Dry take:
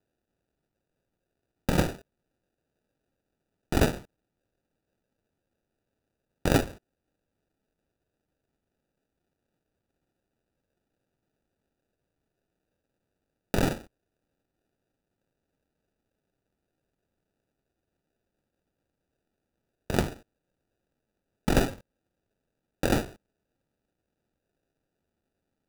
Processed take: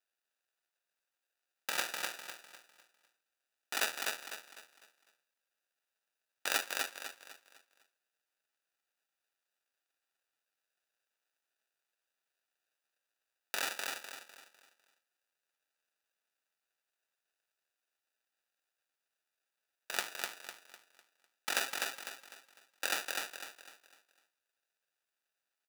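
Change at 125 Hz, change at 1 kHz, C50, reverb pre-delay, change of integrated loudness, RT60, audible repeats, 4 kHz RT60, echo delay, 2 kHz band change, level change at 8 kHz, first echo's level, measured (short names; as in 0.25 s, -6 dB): under -35 dB, -6.0 dB, none, none, -8.5 dB, none, 4, none, 0.251 s, +0.5 dB, +2.0 dB, -3.5 dB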